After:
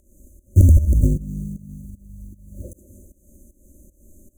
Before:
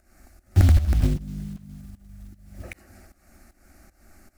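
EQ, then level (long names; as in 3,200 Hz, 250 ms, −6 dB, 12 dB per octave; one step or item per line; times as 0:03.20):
linear-phase brick-wall band-stop 620–6,000 Hz
+4.5 dB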